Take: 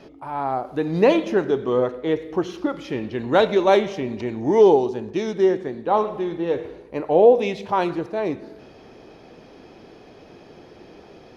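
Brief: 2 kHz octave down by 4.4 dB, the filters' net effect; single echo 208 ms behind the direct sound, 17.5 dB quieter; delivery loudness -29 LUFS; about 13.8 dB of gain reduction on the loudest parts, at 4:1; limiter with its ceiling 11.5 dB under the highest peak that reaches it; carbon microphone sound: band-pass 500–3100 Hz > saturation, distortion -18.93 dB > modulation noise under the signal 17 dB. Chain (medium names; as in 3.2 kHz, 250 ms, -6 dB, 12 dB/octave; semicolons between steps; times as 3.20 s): peaking EQ 2 kHz -5 dB; compression 4:1, threshold -26 dBFS; peak limiter -27 dBFS; band-pass 500–3100 Hz; delay 208 ms -17.5 dB; saturation -32 dBFS; modulation noise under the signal 17 dB; trim +13.5 dB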